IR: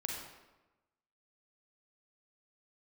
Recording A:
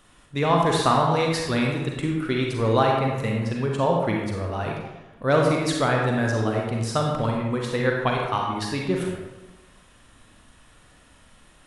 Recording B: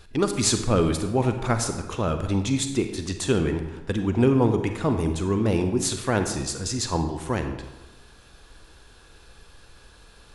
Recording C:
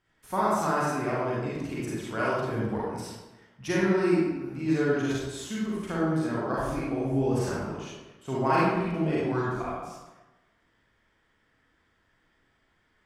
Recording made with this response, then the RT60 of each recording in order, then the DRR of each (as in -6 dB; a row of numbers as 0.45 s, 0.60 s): A; 1.1 s, 1.1 s, 1.1 s; -0.5 dB, 6.5 dB, -7.5 dB